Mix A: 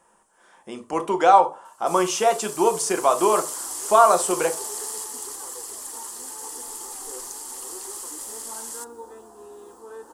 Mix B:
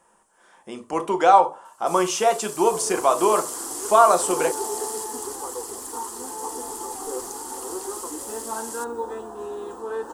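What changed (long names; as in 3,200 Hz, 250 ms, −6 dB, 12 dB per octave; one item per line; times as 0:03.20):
first sound: send off
second sound +10.5 dB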